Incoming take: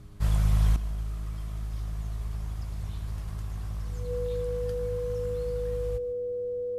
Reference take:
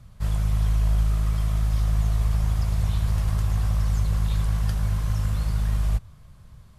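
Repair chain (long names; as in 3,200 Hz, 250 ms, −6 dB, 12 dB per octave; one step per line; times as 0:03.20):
hum removal 102 Hz, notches 4
notch filter 490 Hz, Q 30
echo removal 147 ms −17.5 dB
level 0 dB, from 0:00.76 +11.5 dB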